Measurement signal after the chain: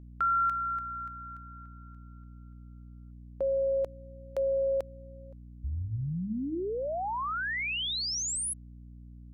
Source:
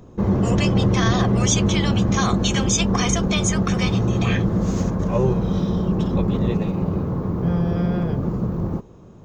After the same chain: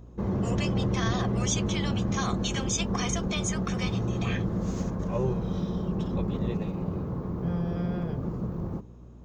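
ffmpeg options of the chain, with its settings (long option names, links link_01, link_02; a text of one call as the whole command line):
ffmpeg -i in.wav -af "aeval=exprs='val(0)+0.0126*(sin(2*PI*60*n/s)+sin(2*PI*2*60*n/s)/2+sin(2*PI*3*60*n/s)/3+sin(2*PI*4*60*n/s)/4+sin(2*PI*5*60*n/s)/5)':channel_layout=same,bandreject=frequency=99.32:width_type=h:width=4,bandreject=frequency=198.64:width_type=h:width=4,bandreject=frequency=297.96:width_type=h:width=4,volume=-8.5dB" out.wav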